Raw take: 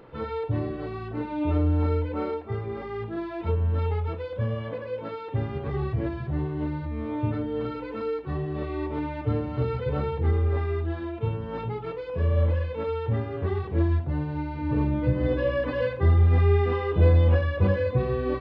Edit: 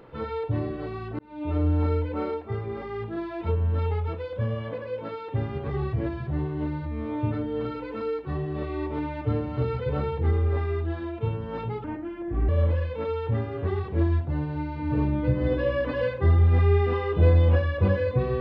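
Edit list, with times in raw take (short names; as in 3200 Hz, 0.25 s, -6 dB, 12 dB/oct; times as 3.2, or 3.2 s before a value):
1.19–1.66 fade in
11.84–12.28 speed 68%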